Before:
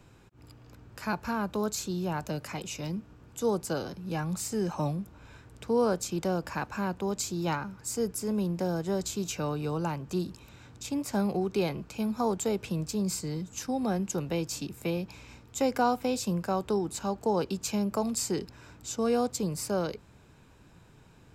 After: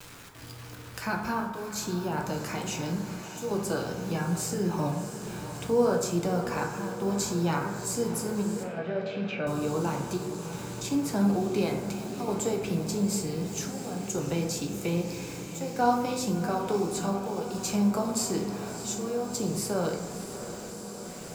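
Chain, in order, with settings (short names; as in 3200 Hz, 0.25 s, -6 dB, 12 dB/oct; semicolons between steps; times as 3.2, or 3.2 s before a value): in parallel at +2 dB: compressor, threshold -35 dBFS, peak gain reduction 14 dB; on the sum: chopper 0.57 Hz, depth 65%, duty 80%; bit-crush 8-bit; diffused feedback echo 0.661 s, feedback 74%, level -12 dB; flange 0.65 Hz, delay 6.5 ms, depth 2.7 ms, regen -69%; 8.63–9.47 speaker cabinet 190–3100 Hz, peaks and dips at 350 Hz -9 dB, 620 Hz +8 dB, 940 Hz -9 dB, 1600 Hz +3 dB, 2400 Hz +7 dB; plate-style reverb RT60 1.1 s, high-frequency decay 0.4×, DRR 1.5 dB; mismatched tape noise reduction encoder only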